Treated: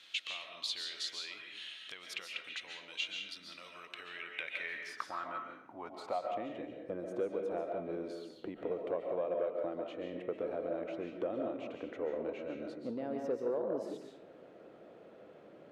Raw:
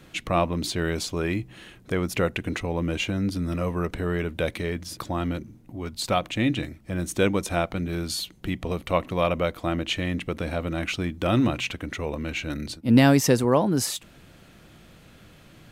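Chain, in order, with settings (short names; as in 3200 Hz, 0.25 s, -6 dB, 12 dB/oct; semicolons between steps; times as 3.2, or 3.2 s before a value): low shelf 140 Hz -12 dB; compressor 6:1, threshold -35 dBFS, peak gain reduction 19.5 dB; band-pass sweep 3600 Hz -> 480 Hz, 3.71–6.73; digital reverb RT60 0.7 s, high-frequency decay 0.7×, pre-delay 0.1 s, DRR 2 dB; core saturation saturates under 390 Hz; gain +5.5 dB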